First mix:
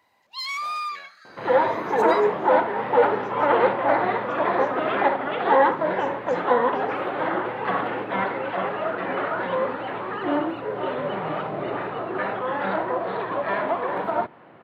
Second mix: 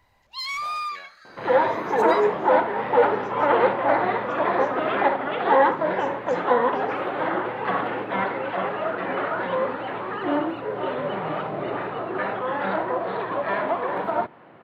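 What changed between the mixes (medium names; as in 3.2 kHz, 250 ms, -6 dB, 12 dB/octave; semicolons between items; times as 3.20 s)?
first sound: remove high-pass 240 Hz 12 dB/octave; reverb: on, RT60 0.85 s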